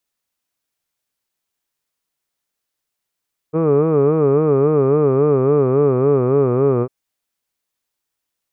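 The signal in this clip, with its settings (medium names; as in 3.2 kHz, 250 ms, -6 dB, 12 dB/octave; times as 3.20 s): formant vowel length 3.35 s, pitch 153 Hz, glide -3 st, vibrato 3.6 Hz, vibrato depth 1.35 st, F1 430 Hz, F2 1.2 kHz, F3 2.4 kHz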